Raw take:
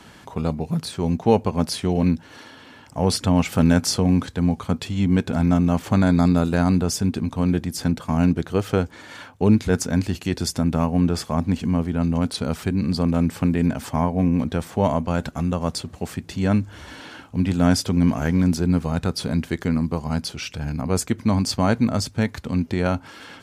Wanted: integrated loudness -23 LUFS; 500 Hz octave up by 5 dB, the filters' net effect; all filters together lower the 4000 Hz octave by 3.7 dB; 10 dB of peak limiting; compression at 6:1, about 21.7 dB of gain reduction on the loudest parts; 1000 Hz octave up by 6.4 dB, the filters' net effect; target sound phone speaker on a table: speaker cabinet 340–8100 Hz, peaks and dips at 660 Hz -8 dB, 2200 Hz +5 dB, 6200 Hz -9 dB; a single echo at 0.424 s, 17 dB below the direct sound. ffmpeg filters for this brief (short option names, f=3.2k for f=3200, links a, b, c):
-af "equalizer=f=500:t=o:g=7,equalizer=f=1k:t=o:g=8,equalizer=f=4k:t=o:g=-3.5,acompressor=threshold=-29dB:ratio=6,alimiter=level_in=0.5dB:limit=-24dB:level=0:latency=1,volume=-0.5dB,highpass=f=340:w=0.5412,highpass=f=340:w=1.3066,equalizer=f=660:t=q:w=4:g=-8,equalizer=f=2.2k:t=q:w=4:g=5,equalizer=f=6.2k:t=q:w=4:g=-9,lowpass=f=8.1k:w=0.5412,lowpass=f=8.1k:w=1.3066,aecho=1:1:424:0.141,volume=19dB"